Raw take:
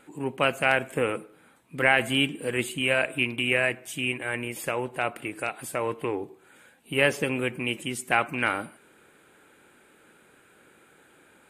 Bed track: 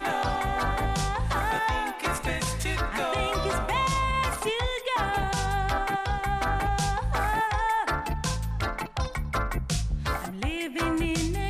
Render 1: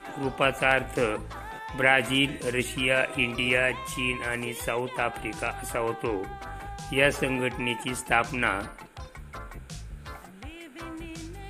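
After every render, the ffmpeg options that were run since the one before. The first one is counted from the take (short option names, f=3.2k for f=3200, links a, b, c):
-filter_complex "[1:a]volume=-12.5dB[a];[0:a][a]amix=inputs=2:normalize=0"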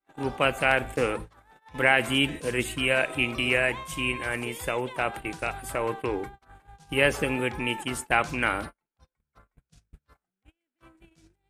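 -af "agate=range=-42dB:threshold=-35dB:ratio=16:detection=peak"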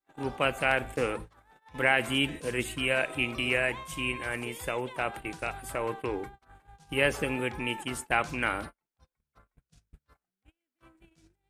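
-af "volume=-3.5dB"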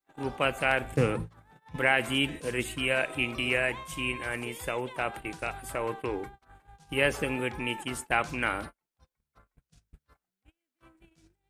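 -filter_complex "[0:a]asettb=1/sr,asplit=3[a][b][c];[a]atrim=end=0.924[d];[b]atrim=start=0.92:end=1.76,asetpts=PTS-STARTPTS,afade=t=in:d=0.004:c=qsin,afade=t=out:st=0.836:d=0.004:c=qsin,equalizer=f=140:w=0.95:g=14.5[e];[c]atrim=start=1.756[f];[d][e]acrossfade=d=0.004:c1=hsin:c2=qsin[g];[g][f]acrossfade=d=0.004:c1=qsin:c2=hsin"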